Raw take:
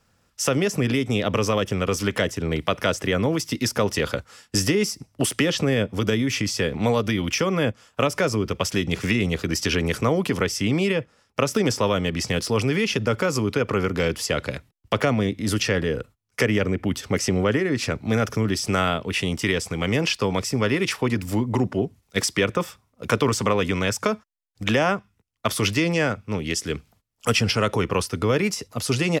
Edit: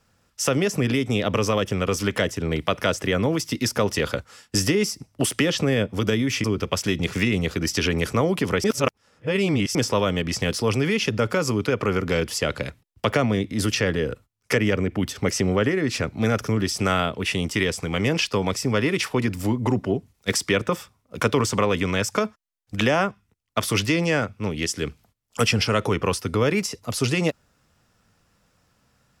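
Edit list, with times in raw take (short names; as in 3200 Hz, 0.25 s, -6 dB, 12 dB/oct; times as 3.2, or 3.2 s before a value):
6.44–8.32 cut
10.52–11.63 reverse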